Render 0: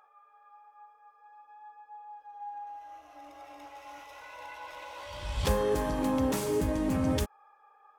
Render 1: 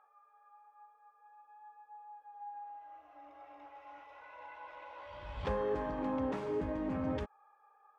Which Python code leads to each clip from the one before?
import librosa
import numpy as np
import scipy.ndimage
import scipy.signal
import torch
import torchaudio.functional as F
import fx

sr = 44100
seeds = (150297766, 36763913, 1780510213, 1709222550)

y = scipy.signal.sosfilt(scipy.signal.butter(2, 2000.0, 'lowpass', fs=sr, output='sos'), x)
y = fx.low_shelf(y, sr, hz=220.0, db=-7.0)
y = F.gain(torch.from_numpy(y), -4.5).numpy()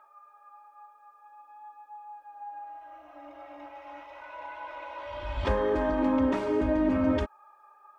y = x + 0.76 * np.pad(x, (int(3.2 * sr / 1000.0), 0))[:len(x)]
y = F.gain(torch.from_numpy(y), 7.5).numpy()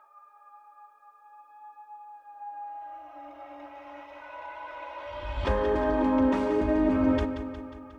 y = fx.echo_feedback(x, sr, ms=180, feedback_pct=59, wet_db=-10.0)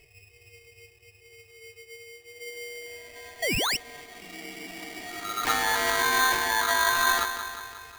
y = fx.spec_paint(x, sr, seeds[0], shape='rise', start_s=3.42, length_s=0.35, low_hz=580.0, high_hz=4500.0, level_db=-26.0)
y = y * np.sign(np.sin(2.0 * np.pi * 1300.0 * np.arange(len(y)) / sr))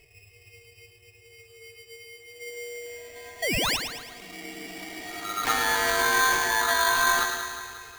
y = fx.echo_feedback(x, sr, ms=109, feedback_pct=49, wet_db=-7.0)